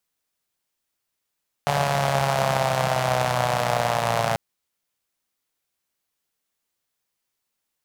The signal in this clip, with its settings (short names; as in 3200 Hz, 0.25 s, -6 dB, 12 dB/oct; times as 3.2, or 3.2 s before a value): four-cylinder engine model, changing speed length 2.69 s, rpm 4300, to 3400, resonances 150/660 Hz